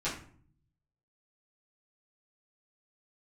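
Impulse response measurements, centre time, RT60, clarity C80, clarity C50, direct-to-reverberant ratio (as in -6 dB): 29 ms, 0.50 s, 11.0 dB, 7.0 dB, -11.0 dB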